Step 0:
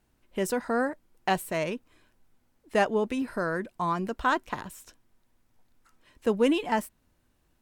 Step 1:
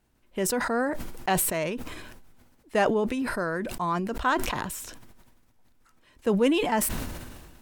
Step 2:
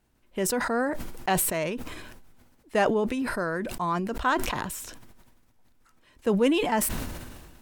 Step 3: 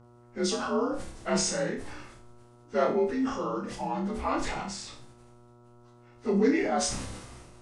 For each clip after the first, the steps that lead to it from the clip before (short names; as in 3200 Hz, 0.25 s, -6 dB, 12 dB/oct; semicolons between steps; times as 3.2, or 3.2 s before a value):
sustainer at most 35 dB/s
nothing audible
inharmonic rescaling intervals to 86%; buzz 120 Hz, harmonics 12, -52 dBFS -6 dB/oct; flutter echo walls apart 5.2 m, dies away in 0.38 s; gain -2.5 dB